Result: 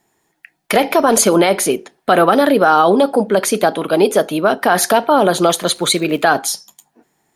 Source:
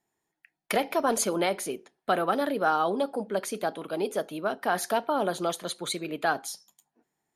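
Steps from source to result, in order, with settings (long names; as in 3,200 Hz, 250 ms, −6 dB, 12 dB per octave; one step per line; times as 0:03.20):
0:05.42–0:06.30: surface crackle 160 per second −48 dBFS
boost into a limiter +18 dB
level −1 dB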